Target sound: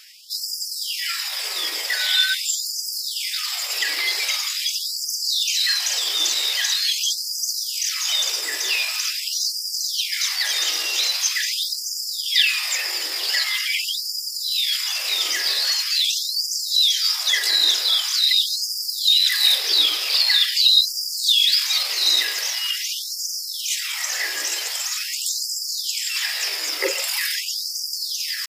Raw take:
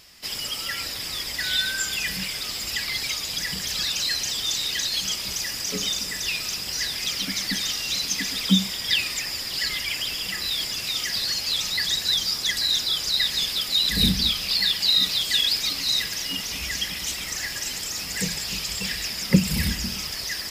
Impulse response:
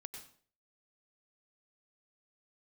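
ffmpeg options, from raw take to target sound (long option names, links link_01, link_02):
-filter_complex "[0:a]atempo=0.72,asplit=2[link_01][link_02];[1:a]atrim=start_sample=2205,lowpass=2300,adelay=41[link_03];[link_02][link_03]afir=irnorm=-1:irlink=0,volume=0dB[link_04];[link_01][link_04]amix=inputs=2:normalize=0,afftfilt=real='re*gte(b*sr/1024,290*pow(4700/290,0.5+0.5*sin(2*PI*0.44*pts/sr)))':imag='im*gte(b*sr/1024,290*pow(4700/290,0.5+0.5*sin(2*PI*0.44*pts/sr)))':win_size=1024:overlap=0.75,volume=5dB"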